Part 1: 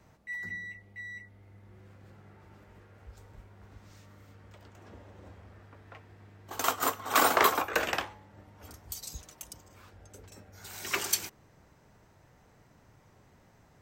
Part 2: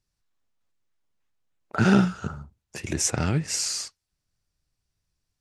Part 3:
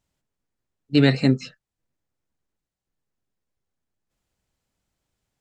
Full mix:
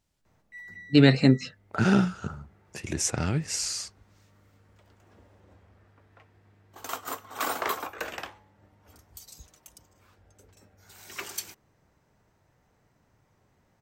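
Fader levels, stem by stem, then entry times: -6.5 dB, -3.0 dB, -0.5 dB; 0.25 s, 0.00 s, 0.00 s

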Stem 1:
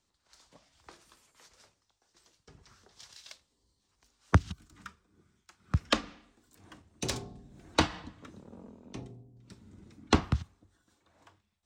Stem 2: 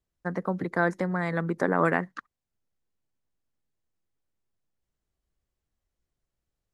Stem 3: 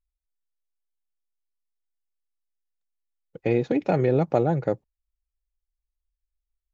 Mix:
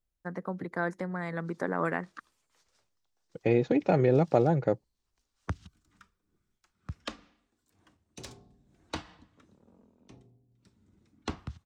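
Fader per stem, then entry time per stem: -11.5 dB, -6.5 dB, -2.0 dB; 1.15 s, 0.00 s, 0.00 s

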